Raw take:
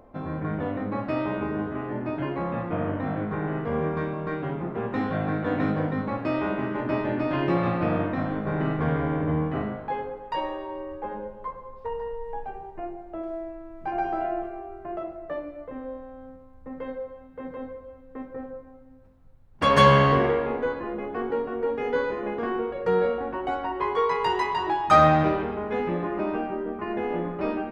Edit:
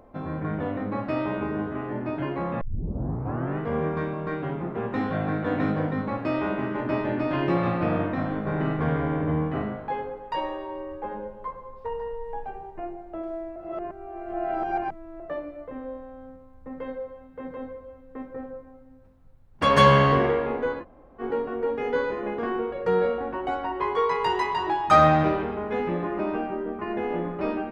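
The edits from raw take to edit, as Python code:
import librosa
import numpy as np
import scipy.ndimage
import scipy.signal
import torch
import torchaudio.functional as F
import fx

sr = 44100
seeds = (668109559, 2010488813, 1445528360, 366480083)

y = fx.edit(x, sr, fx.tape_start(start_s=2.61, length_s=0.98),
    fx.reverse_span(start_s=13.56, length_s=1.64),
    fx.room_tone_fill(start_s=20.82, length_s=0.39, crossfade_s=0.06), tone=tone)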